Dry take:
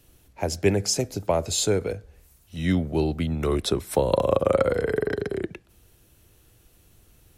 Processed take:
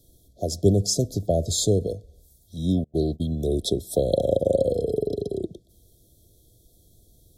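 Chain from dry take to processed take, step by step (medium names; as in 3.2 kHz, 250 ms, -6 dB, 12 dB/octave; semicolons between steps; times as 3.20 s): 0.63–1.87 s: tone controls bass +6 dB, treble 0 dB; 2.84–3.27 s: gate -27 dBFS, range -32 dB; brick-wall FIR band-stop 740–3200 Hz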